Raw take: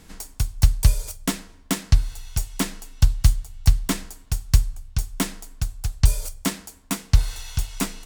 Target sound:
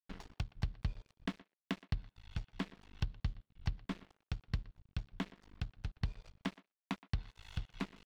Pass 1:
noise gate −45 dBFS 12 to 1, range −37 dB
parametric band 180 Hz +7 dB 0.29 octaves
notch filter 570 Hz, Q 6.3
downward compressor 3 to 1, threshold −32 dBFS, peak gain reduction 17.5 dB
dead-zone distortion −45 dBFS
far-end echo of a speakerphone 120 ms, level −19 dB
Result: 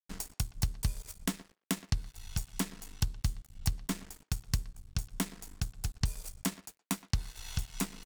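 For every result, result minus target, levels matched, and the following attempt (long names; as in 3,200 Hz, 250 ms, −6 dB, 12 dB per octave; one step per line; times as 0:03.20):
downward compressor: peak gain reduction −5 dB; 4,000 Hz band +2.5 dB
noise gate −45 dBFS 12 to 1, range −37 dB
parametric band 180 Hz +7 dB 0.29 octaves
notch filter 570 Hz, Q 6.3
downward compressor 3 to 1, threshold −39.5 dBFS, peak gain reduction 22.5 dB
dead-zone distortion −45 dBFS
far-end echo of a speakerphone 120 ms, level −19 dB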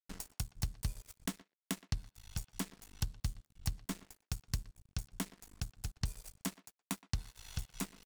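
4,000 Hz band +2.5 dB
noise gate −45 dBFS 12 to 1, range −37 dB
low-pass filter 3,700 Hz 24 dB per octave
parametric band 180 Hz +7 dB 0.29 octaves
notch filter 570 Hz, Q 6.3
downward compressor 3 to 1, threshold −39.5 dBFS, peak gain reduction 22.5 dB
dead-zone distortion −45 dBFS
far-end echo of a speakerphone 120 ms, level −19 dB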